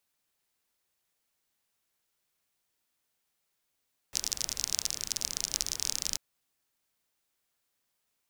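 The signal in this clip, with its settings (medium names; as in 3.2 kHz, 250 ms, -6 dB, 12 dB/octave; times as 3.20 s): rain from filtered ticks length 2.04 s, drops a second 36, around 5.7 kHz, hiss -14 dB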